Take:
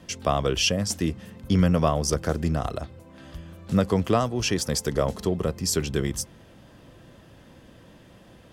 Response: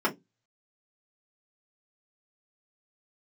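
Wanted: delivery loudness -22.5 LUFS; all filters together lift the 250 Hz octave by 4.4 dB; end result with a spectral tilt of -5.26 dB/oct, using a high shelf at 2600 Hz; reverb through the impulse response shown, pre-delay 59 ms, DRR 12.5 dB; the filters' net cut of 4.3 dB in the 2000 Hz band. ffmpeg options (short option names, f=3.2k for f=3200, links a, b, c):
-filter_complex "[0:a]equalizer=f=250:t=o:g=6.5,equalizer=f=2k:t=o:g=-9,highshelf=f=2.6k:g=3.5,asplit=2[a][b];[1:a]atrim=start_sample=2205,adelay=59[c];[b][c]afir=irnorm=-1:irlink=0,volume=-24.5dB[d];[a][d]amix=inputs=2:normalize=0"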